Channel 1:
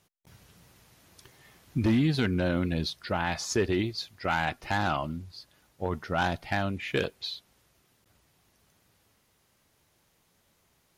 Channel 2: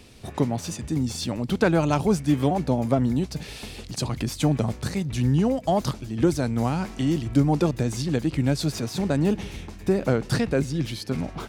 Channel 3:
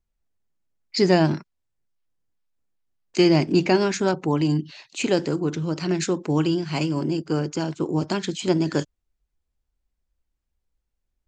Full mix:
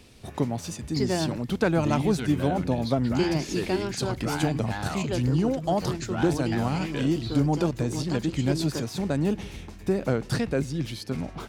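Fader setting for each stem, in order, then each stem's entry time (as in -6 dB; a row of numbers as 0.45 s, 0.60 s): -6.0 dB, -3.0 dB, -9.5 dB; 0.00 s, 0.00 s, 0.00 s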